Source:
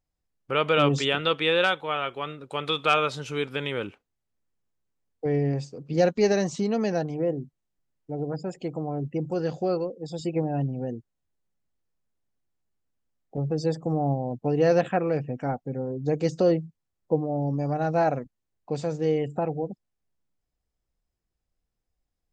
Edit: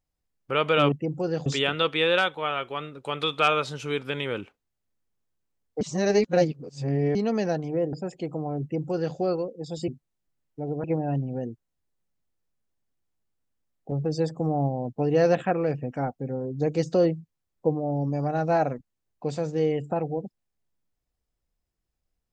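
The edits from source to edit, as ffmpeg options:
-filter_complex "[0:a]asplit=8[s0][s1][s2][s3][s4][s5][s6][s7];[s0]atrim=end=0.922[s8];[s1]atrim=start=9.038:end=9.582[s9];[s2]atrim=start=0.918:end=5.272[s10];[s3]atrim=start=5.268:end=6.612,asetpts=PTS-STARTPTS,areverse[s11];[s4]atrim=start=6.608:end=7.392[s12];[s5]atrim=start=8.348:end=10.302[s13];[s6]atrim=start=7.388:end=8.352[s14];[s7]atrim=start=10.298[s15];[s8][s9]acrossfade=d=0.004:c1=hsin:c2=hsin[s16];[s16][s10]acrossfade=d=0.004:c1=hsin:c2=hsin[s17];[s17][s11]acrossfade=d=0.004:c1=hsin:c2=hsin[s18];[s18][s12]acrossfade=d=0.004:c1=hsin:c2=hsin[s19];[s19][s13]acrossfade=d=0.004:c1=hsin:c2=hsin[s20];[s20][s14]acrossfade=d=0.004:c1=hsin:c2=hsin[s21];[s21][s15]acrossfade=d=0.004:c1=hsin:c2=hsin"

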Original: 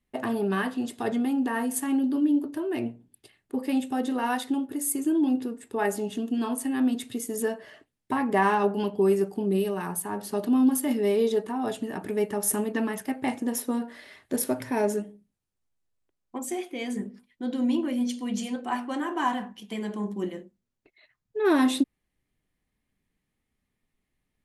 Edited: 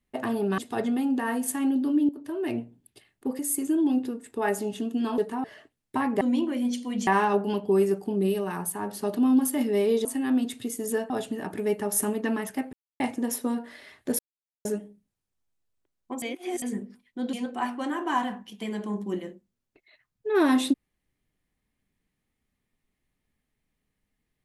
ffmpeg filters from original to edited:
-filter_complex "[0:a]asplit=16[s0][s1][s2][s3][s4][s5][s6][s7][s8][s9][s10][s11][s12][s13][s14][s15];[s0]atrim=end=0.582[s16];[s1]atrim=start=0.858:end=2.37,asetpts=PTS-STARTPTS,afade=t=out:st=1.508:d=0.004:c=hsin:silence=0.223872[s17];[s2]atrim=start=2.37:end=3.672,asetpts=PTS-STARTPTS,afade=t=in:d=0.33:silence=0.223872[s18];[s3]atrim=start=4.758:end=6.552[s19];[s4]atrim=start=11.348:end=11.612[s20];[s5]atrim=start=7.598:end=8.372[s21];[s6]atrim=start=17.568:end=18.432[s22];[s7]atrim=start=8.368:end=11.352[s23];[s8]atrim=start=6.548:end=7.602[s24];[s9]atrim=start=11.608:end=13.24,asetpts=PTS-STARTPTS,afade=t=out:st=1.628:d=0.004:c=hsin,apad=pad_dur=0.27[s25];[s10]atrim=start=13.24:end=14.43,asetpts=PTS-STARTPTS,afade=t=in:d=0.004:c=hsin,afade=t=out:st=1.186:d=0.004:c=hsin[s26];[s11]atrim=start=14.43:end=14.89,asetpts=PTS-STARTPTS,volume=0[s27];[s12]atrim=start=14.89:end=16.462,asetpts=PTS-STARTPTS,afade=t=in:d=0.004:c=hsin[s28];[s13]atrim=start=16.458:end=16.862,asetpts=PTS-STARTPTS,areverse[s29];[s14]atrim=start=16.858:end=17.572[s30];[s15]atrim=start=18.428[s31];[s17][s18]concat=n=2:v=0:a=1[s32];[s16][s32]acrossfade=d=0.004:c1=hsin:c2=hsin[s33];[s33][s19]acrossfade=d=0.004:c1=hsin:c2=hsin[s34];[s34][s20]acrossfade=d=0.004:c1=hsin:c2=hsin[s35];[s35][s21]acrossfade=d=0.004:c1=hsin:c2=hsin[s36];[s36][s22]acrossfade=d=0.004:c1=hsin:c2=hsin[s37];[s37][s23]acrossfade=d=0.004:c1=hsin:c2=hsin[s38];[s38][s24]acrossfade=d=0.004:c1=hsin:c2=hsin[s39];[s25][s26][s27][s28]concat=n=4:v=0:a=1[s40];[s39][s40]acrossfade=d=0.004:c1=hsin:c2=hsin[s41];[s41][s29]acrossfade=d=0.004:c1=hsin:c2=hsin[s42];[s42][s30]acrossfade=d=0.004:c1=hsin:c2=hsin[s43];[s43][s31]acrossfade=d=0.004:c1=hsin:c2=hsin"

